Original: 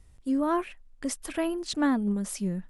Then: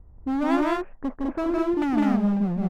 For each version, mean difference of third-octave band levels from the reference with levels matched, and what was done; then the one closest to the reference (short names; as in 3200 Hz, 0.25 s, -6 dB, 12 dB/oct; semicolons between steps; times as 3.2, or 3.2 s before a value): 10.0 dB: LPF 1100 Hz 24 dB/oct; overloaded stage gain 30 dB; on a send: loudspeakers at several distances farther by 55 m -2 dB, 70 m -1 dB; on the sum: gain +6.5 dB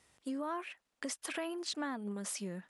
5.5 dB: weighting filter A; in parallel at -1 dB: limiter -26.5 dBFS, peak gain reduction 7.5 dB; on the sum: compressor 4:1, threshold -34 dBFS, peak gain reduction 11 dB; gain -3 dB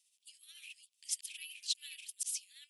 18.0 dB: reverse delay 0.558 s, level -3 dB; steep high-pass 2600 Hz 48 dB/oct; tremolo 14 Hz, depth 45%; gain +1 dB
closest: second